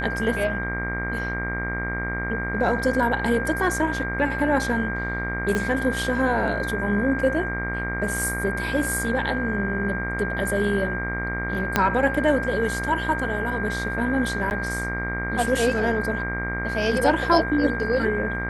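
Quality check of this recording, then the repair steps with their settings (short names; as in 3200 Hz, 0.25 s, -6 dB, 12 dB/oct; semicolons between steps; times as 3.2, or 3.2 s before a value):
buzz 60 Hz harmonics 39 -30 dBFS
tone 1600 Hz -28 dBFS
5.55 pop -12 dBFS
11.76 pop -4 dBFS
14.5–14.51 gap 9.9 ms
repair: de-click; de-hum 60 Hz, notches 39; notch 1600 Hz, Q 30; interpolate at 14.5, 9.9 ms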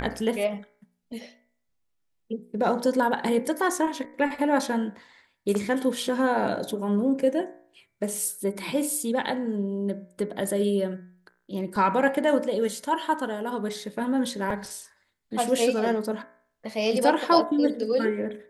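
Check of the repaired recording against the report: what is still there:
5.55 pop
11.76 pop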